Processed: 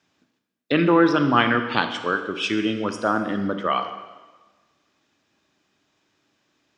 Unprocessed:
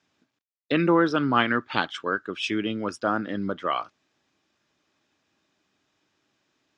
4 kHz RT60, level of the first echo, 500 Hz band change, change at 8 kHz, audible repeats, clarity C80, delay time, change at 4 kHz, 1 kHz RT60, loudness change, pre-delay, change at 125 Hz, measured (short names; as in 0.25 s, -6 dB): 1.2 s, none, +4.0 dB, +3.5 dB, none, 10.0 dB, none, +4.0 dB, 1.3 s, +3.5 dB, 27 ms, +4.0 dB